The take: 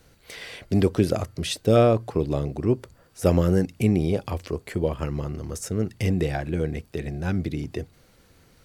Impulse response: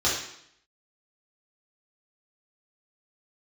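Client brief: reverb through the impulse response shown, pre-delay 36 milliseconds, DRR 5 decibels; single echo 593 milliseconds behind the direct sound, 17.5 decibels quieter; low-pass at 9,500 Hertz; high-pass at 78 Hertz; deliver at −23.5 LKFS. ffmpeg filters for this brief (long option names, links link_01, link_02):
-filter_complex "[0:a]highpass=78,lowpass=9500,aecho=1:1:593:0.133,asplit=2[link_01][link_02];[1:a]atrim=start_sample=2205,adelay=36[link_03];[link_02][link_03]afir=irnorm=-1:irlink=0,volume=-18.5dB[link_04];[link_01][link_04]amix=inputs=2:normalize=0,volume=0.5dB"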